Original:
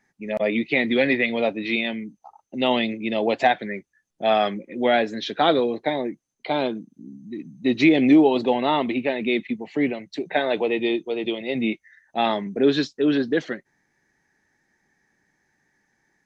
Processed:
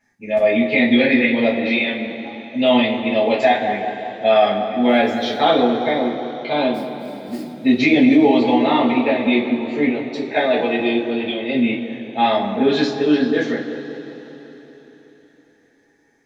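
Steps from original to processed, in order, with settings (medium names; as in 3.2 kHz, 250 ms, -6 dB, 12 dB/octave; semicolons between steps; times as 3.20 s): 4.87–5.37 s: crackle 500 per s -46 dBFS; 6.74–7.52 s: sample-rate reducer 4.7 kHz, jitter 20%; on a send: bucket-brigade echo 189 ms, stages 2048, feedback 58%, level -11 dB; on the sum: two-slope reverb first 0.26 s, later 4.1 s, from -21 dB, DRR -7.5 dB; loudness maximiser 0 dB; trim -3.5 dB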